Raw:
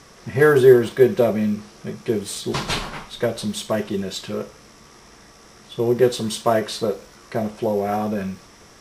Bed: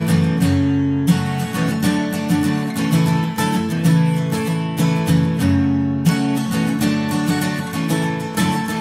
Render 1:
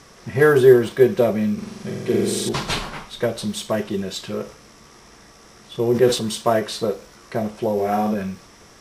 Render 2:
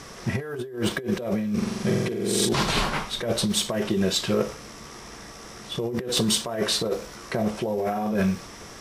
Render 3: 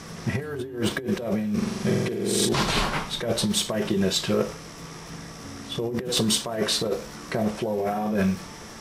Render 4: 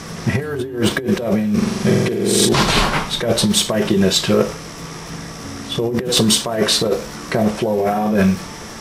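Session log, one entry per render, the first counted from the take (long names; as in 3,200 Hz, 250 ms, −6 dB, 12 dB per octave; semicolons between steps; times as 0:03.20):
0:01.53–0:02.49: flutter between parallel walls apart 7.7 metres, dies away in 1.4 s; 0:04.42–0:06.36: level that may fall only so fast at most 110 dB per second; 0:07.74–0:08.14: double-tracking delay 43 ms −4 dB
compressor whose output falls as the input rises −26 dBFS, ratio −1
mix in bed −26.5 dB
level +8.5 dB; brickwall limiter −1 dBFS, peak gain reduction 1.5 dB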